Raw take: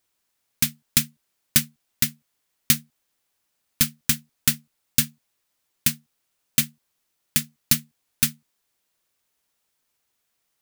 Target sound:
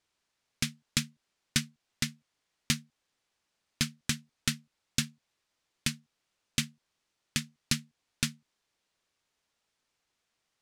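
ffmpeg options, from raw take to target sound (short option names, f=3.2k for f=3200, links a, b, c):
-filter_complex "[0:a]lowpass=6.3k,asplit=2[a][b];[b]acompressor=threshold=-33dB:ratio=6,volume=-2dB[c];[a][c]amix=inputs=2:normalize=0,volume=-6.5dB"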